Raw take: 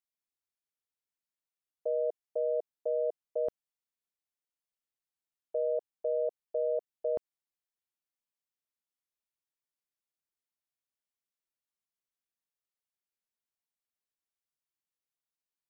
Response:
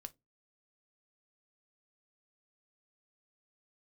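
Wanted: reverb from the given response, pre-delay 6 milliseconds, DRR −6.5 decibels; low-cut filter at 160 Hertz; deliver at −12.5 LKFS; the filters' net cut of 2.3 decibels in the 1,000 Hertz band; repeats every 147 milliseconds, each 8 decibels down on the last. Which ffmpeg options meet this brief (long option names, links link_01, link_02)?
-filter_complex "[0:a]highpass=160,equalizer=frequency=1000:width_type=o:gain=-5,aecho=1:1:147|294|441|588|735:0.398|0.159|0.0637|0.0255|0.0102,asplit=2[link_01][link_02];[1:a]atrim=start_sample=2205,adelay=6[link_03];[link_02][link_03]afir=irnorm=-1:irlink=0,volume=12dB[link_04];[link_01][link_04]amix=inputs=2:normalize=0,volume=15.5dB"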